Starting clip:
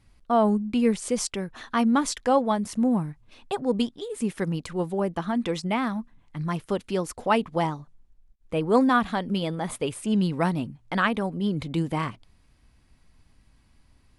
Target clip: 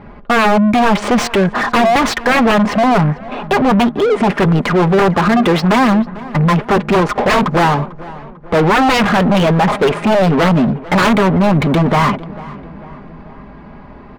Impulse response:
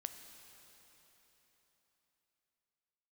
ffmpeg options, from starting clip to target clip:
-filter_complex "[0:a]aecho=1:1:4.9:0.5,adynamicsmooth=sensitivity=6:basefreq=1000,aeval=exprs='0.447*sin(PI/2*5.01*val(0)/0.447)':c=same,asplit=2[s0][s1];[s1]highpass=f=720:p=1,volume=25.1,asoftclip=type=tanh:threshold=0.473[s2];[s0][s2]amix=inputs=2:normalize=0,lowpass=f=1800:p=1,volume=0.501,asplit=2[s3][s4];[s4]adelay=446,lowpass=f=2300:p=1,volume=0.126,asplit=2[s5][s6];[s6]adelay=446,lowpass=f=2300:p=1,volume=0.55,asplit=2[s7][s8];[s8]adelay=446,lowpass=f=2300:p=1,volume=0.55,asplit=2[s9][s10];[s10]adelay=446,lowpass=f=2300:p=1,volume=0.55,asplit=2[s11][s12];[s12]adelay=446,lowpass=f=2300:p=1,volume=0.55[s13];[s3][s5][s7][s9][s11][s13]amix=inputs=6:normalize=0"

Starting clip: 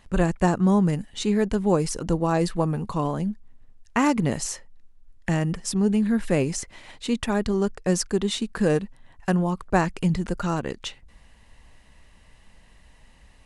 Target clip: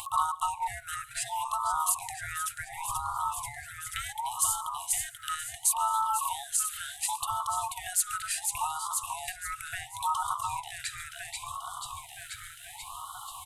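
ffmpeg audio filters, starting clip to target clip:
-filter_complex "[0:a]equalizer=f=100:t=o:w=0.67:g=-12,equalizer=f=400:t=o:w=0.67:g=-8,equalizer=f=2500:t=o:w=0.67:g=8,asplit=2[s0][s1];[s1]asplit=8[s2][s3][s4][s5][s6][s7][s8][s9];[s2]adelay=485,afreqshift=-54,volume=0.398[s10];[s3]adelay=970,afreqshift=-108,volume=0.243[s11];[s4]adelay=1455,afreqshift=-162,volume=0.148[s12];[s5]adelay=1940,afreqshift=-216,volume=0.0902[s13];[s6]adelay=2425,afreqshift=-270,volume=0.055[s14];[s7]adelay=2910,afreqshift=-324,volume=0.0335[s15];[s8]adelay=3395,afreqshift=-378,volume=0.0204[s16];[s9]adelay=3880,afreqshift=-432,volume=0.0124[s17];[s10][s11][s12][s13][s14][s15][s16][s17]amix=inputs=8:normalize=0[s18];[s0][s18]amix=inputs=2:normalize=0,acrossover=split=230[s19][s20];[s20]acompressor=threshold=0.0251:ratio=4[s21];[s19][s21]amix=inputs=2:normalize=0,aeval=exprs='val(0)*sin(2*PI*1100*n/s)':c=same,acompressor=mode=upward:threshold=0.0282:ratio=2.5,afftfilt=real='re*(1-between(b*sr/4096,130,670))':imag='im*(1-between(b*sr/4096,130,670))':win_size=4096:overlap=0.75,asplit=2[s22][s23];[s23]aecho=0:1:136:0.0841[s24];[s22][s24]amix=inputs=2:normalize=0,aexciter=amount=8.2:drive=4.4:freq=7500,afftfilt=real='re*(1-between(b*sr/1024,870*pow(2100/870,0.5+0.5*sin(2*PI*0.7*pts/sr))/1.41,870*pow(2100/870,0.5+0.5*sin(2*PI*0.7*pts/sr))*1.41))':imag='im*(1-between(b*sr/1024,870*pow(2100/870,0.5+0.5*sin(2*PI*0.7*pts/sr))/1.41,870*pow(2100/870,0.5+0.5*sin(2*PI*0.7*pts/sr))*1.41))':win_size=1024:overlap=0.75"

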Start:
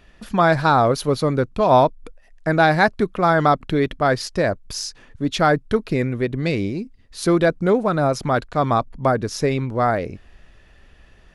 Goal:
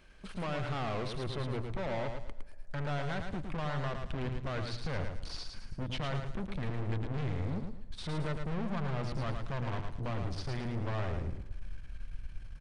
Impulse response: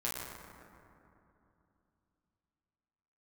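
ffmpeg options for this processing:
-filter_complex "[0:a]alimiter=limit=0.237:level=0:latency=1:release=108,asubboost=boost=7.5:cutoff=150,asetrate=39690,aresample=44100,bandreject=f=60:t=h:w=6,bandreject=f=120:t=h:w=6,aeval=exprs='(tanh(28.2*val(0)+0.55)-tanh(0.55))/28.2':c=same,highshelf=f=4300:g=6.5,asplit=2[s0][s1];[s1]aecho=0:1:110|220|330|440:0.501|0.15|0.0451|0.0135[s2];[s0][s2]amix=inputs=2:normalize=0,aresample=22050,aresample=44100,asplit=2[s3][s4];[1:a]atrim=start_sample=2205[s5];[s4][s5]afir=irnorm=-1:irlink=0,volume=0.0447[s6];[s3][s6]amix=inputs=2:normalize=0,acrossover=split=4100[s7][s8];[s8]acompressor=threshold=0.00141:ratio=4:attack=1:release=60[s9];[s7][s9]amix=inputs=2:normalize=0,volume=0.501"

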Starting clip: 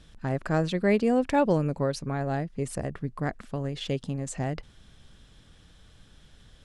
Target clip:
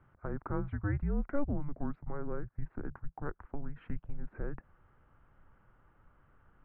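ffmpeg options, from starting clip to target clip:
-af "highpass=f=170:t=q:w=0.5412,highpass=f=170:t=q:w=1.307,lowpass=f=2000:t=q:w=0.5176,lowpass=f=2000:t=q:w=0.7071,lowpass=f=2000:t=q:w=1.932,afreqshift=-290,asubboost=boost=3.5:cutoff=53,acompressor=threshold=0.0141:ratio=1.5,volume=0.75"

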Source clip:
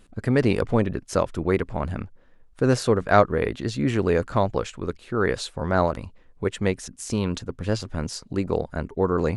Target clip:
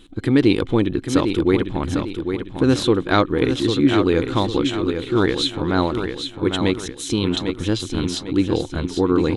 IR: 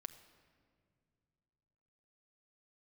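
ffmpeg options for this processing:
-filter_complex "[0:a]superequalizer=6b=3.16:8b=0.501:12b=1.58:13b=3.98,asplit=2[s0][s1];[s1]acompressor=threshold=0.0562:ratio=6,volume=0.75[s2];[s0][s2]amix=inputs=2:normalize=0,aecho=1:1:800|1600|2400|3200|4000:0.447|0.179|0.0715|0.0286|0.0114,volume=0.891"

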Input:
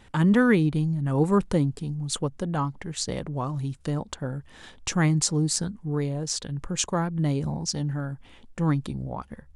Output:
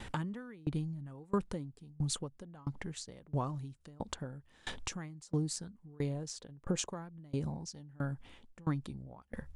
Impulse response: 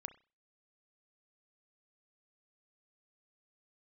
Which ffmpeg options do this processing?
-filter_complex "[0:a]asettb=1/sr,asplit=3[s0][s1][s2];[s0]atrim=end=6.384[s3];[s1]atrim=start=6.38:end=6.91,asetpts=PTS-STARTPTS,afade=t=in:d=0.004:c=qsin,afade=t=out:st=0.526:d=0.004:c=qsin,equalizer=f=490:w=0.62:g=8.5[s4];[s2]atrim=start=6.906[s5];[s3][s4]acrossfade=d=0.004:c1=hsin:c2=qsin[s6];[s6][s5]acrossfade=d=0.004:c1=qsin:c2=hsin,acompressor=threshold=0.0112:ratio=4,aeval=exprs='val(0)*pow(10,-27*if(lt(mod(1.5*n/s,1),2*abs(1.5)/1000),1-mod(1.5*n/s,1)/(2*abs(1.5)/1000),(mod(1.5*n/s,1)-2*abs(1.5)/1000)/(1-2*abs(1.5)/1000))/20)':c=same,volume=2.66"

